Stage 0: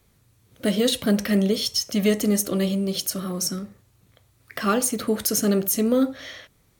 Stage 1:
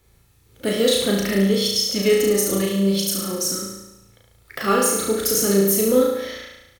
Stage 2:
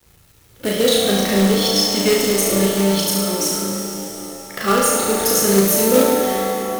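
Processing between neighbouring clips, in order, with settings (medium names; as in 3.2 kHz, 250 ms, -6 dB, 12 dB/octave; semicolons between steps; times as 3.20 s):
comb 2.3 ms, depth 32%; on a send: flutter echo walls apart 6.1 m, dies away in 0.95 s
companded quantiser 4-bit; pitch-shifted reverb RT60 3.7 s, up +7 st, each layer -8 dB, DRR 3.5 dB; trim +1.5 dB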